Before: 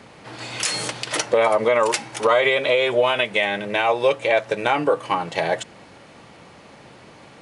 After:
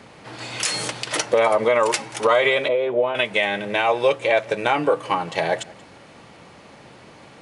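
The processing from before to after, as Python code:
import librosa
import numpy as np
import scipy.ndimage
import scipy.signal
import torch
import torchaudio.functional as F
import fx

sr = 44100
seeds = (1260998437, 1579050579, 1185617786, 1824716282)

y = fx.bandpass_q(x, sr, hz=340.0, q=0.65, at=(2.68, 3.15))
y = y + 10.0 ** (-23.0 / 20.0) * np.pad(y, (int(181 * sr / 1000.0), 0))[:len(y)]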